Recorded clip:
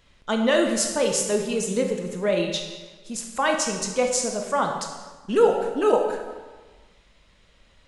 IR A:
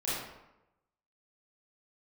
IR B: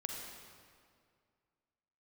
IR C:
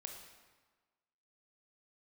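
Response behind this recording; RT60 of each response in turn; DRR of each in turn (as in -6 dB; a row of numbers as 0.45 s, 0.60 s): C; 0.95 s, 2.2 s, 1.4 s; -10.5 dB, 0.5 dB, 2.5 dB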